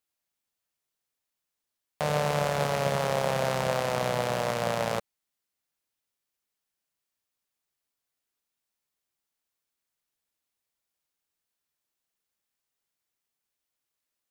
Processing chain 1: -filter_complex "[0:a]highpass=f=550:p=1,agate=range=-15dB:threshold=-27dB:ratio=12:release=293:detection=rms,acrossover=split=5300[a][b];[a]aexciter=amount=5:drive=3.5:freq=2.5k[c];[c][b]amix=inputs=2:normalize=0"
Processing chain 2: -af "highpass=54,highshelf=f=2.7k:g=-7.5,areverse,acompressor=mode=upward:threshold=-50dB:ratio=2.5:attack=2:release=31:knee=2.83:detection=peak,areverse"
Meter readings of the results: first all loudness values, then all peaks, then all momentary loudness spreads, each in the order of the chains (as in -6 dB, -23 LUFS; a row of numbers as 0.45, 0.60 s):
-27.5, -29.0 LUFS; -9.0, -14.0 dBFS; 3, 3 LU